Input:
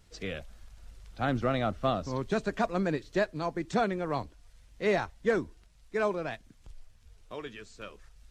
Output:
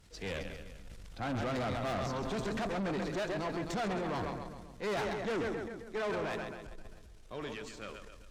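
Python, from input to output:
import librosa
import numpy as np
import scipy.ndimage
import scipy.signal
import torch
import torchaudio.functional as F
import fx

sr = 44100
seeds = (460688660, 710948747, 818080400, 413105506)

y = fx.echo_split(x, sr, split_hz=310.0, low_ms=188, high_ms=133, feedback_pct=52, wet_db=-10.0)
y = fx.transient(y, sr, attack_db=-3, sustain_db=6)
y = fx.tube_stage(y, sr, drive_db=34.0, bias=0.55)
y = F.gain(torch.from_numpy(y), 2.5).numpy()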